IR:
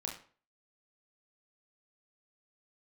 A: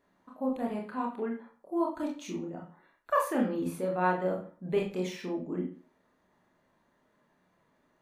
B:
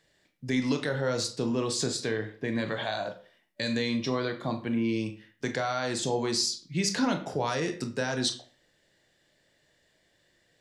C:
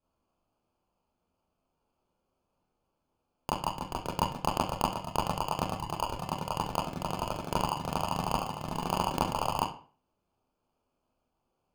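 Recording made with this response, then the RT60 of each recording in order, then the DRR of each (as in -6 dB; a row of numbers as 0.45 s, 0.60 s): A; 0.45 s, 0.45 s, 0.45 s; -1.0 dB, 6.0 dB, -6.5 dB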